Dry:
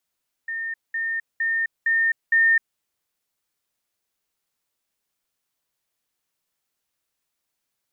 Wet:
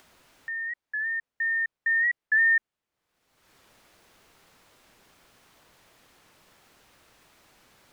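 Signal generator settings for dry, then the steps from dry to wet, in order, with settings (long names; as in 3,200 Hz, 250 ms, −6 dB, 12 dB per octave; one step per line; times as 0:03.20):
level staircase 1,820 Hz −26 dBFS, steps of 3 dB, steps 5, 0.26 s 0.20 s
low-pass filter 1,800 Hz 6 dB per octave
upward compression, threshold −37 dBFS
wow of a warped record 45 rpm, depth 100 cents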